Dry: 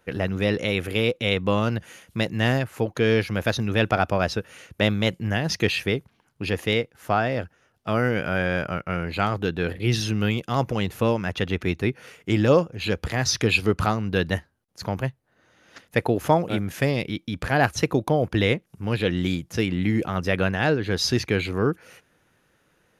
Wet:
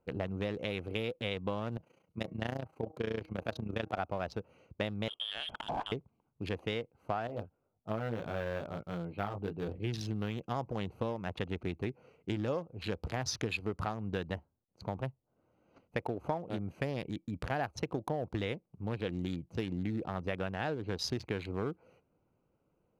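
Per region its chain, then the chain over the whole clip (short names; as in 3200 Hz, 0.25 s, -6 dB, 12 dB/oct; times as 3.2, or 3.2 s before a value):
1.77–3.98 HPF 91 Hz + de-hum 157.8 Hz, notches 14 + AM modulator 29 Hz, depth 65%
5.08–5.92 negative-ratio compressor -31 dBFS + sample leveller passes 1 + inverted band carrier 3400 Hz
7.27–9.68 low-pass opened by the level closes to 1100 Hz, open at -19 dBFS + chorus 1.2 Hz, delay 17.5 ms, depth 2.8 ms + decimation joined by straight lines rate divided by 3×
whole clip: Wiener smoothing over 25 samples; dynamic EQ 820 Hz, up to +5 dB, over -38 dBFS, Q 1.1; compressor 6:1, threshold -23 dBFS; gain -8 dB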